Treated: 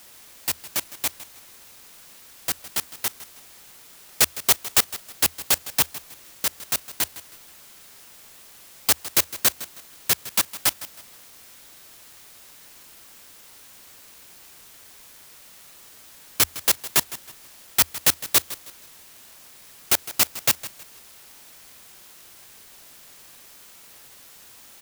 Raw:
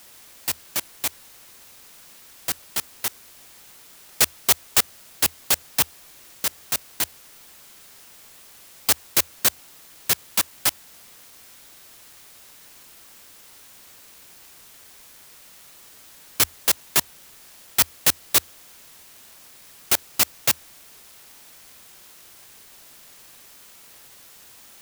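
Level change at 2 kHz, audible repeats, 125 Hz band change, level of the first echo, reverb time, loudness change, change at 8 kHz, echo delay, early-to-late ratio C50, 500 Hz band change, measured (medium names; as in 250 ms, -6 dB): 0.0 dB, 2, 0.0 dB, -16.0 dB, no reverb, 0.0 dB, 0.0 dB, 159 ms, no reverb, 0.0 dB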